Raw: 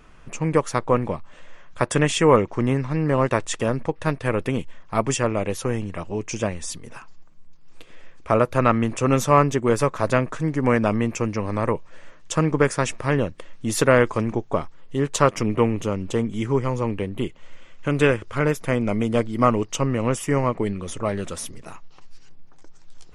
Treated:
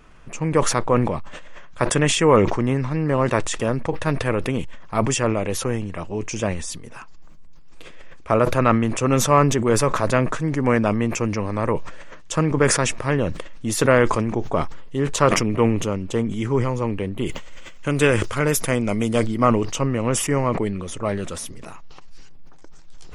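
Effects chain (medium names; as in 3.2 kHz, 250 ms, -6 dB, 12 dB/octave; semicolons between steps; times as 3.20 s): 17.25–19.26 s: treble shelf 6.7 kHz -> 4.3 kHz +12 dB; decay stretcher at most 47 dB/s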